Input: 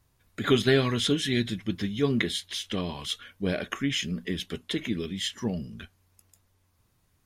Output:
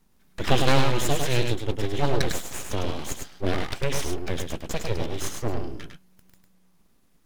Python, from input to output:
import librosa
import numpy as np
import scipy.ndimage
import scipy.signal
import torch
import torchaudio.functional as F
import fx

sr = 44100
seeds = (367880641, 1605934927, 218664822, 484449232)

p1 = scipy.signal.sosfilt(scipy.signal.butter(4, 67.0, 'highpass', fs=sr, output='sos'), x)
p2 = fx.low_shelf(p1, sr, hz=140.0, db=9.0)
p3 = np.abs(p2)
p4 = p3 + fx.echo_single(p3, sr, ms=103, db=-5.0, dry=0)
y = p4 * 10.0 ** (2.0 / 20.0)